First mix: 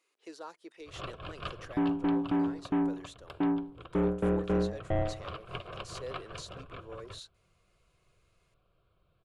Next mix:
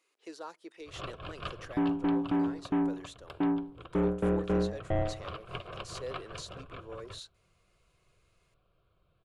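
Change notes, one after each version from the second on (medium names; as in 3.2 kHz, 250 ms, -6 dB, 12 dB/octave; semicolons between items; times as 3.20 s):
speech: send +11.0 dB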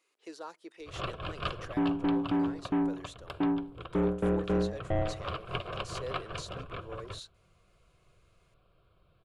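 first sound +5.0 dB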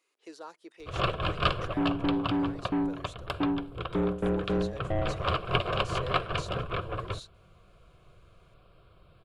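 speech: send -7.0 dB; first sound +8.5 dB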